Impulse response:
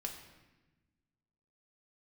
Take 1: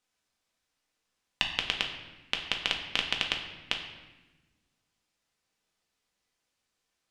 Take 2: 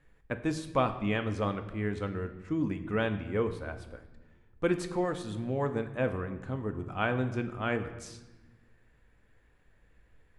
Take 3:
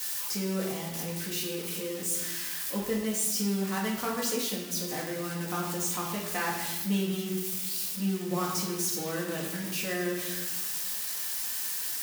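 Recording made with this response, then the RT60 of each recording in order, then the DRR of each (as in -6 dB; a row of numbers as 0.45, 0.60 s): 1; 1.1, 1.2, 1.1 s; 1.5, 7.5, -4.0 dB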